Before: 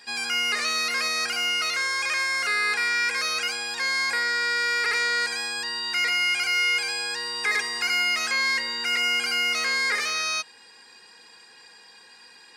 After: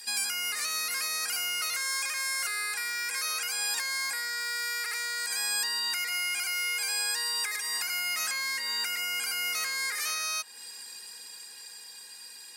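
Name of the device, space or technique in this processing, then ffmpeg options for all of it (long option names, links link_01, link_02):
FM broadcast chain: -filter_complex "[0:a]highpass=63,dynaudnorm=framelen=340:gausssize=13:maxgain=4.5dB,acrossover=split=660|2100[link_01][link_02][link_03];[link_01]acompressor=threshold=-51dB:ratio=4[link_04];[link_02]acompressor=threshold=-26dB:ratio=4[link_05];[link_03]acompressor=threshold=-35dB:ratio=4[link_06];[link_04][link_05][link_06]amix=inputs=3:normalize=0,aemphasis=mode=production:type=50fm,alimiter=limit=-20.5dB:level=0:latency=1:release=298,asoftclip=type=hard:threshold=-21.5dB,lowpass=frequency=15000:width=0.5412,lowpass=frequency=15000:width=1.3066,aemphasis=mode=production:type=50fm,volume=-5dB"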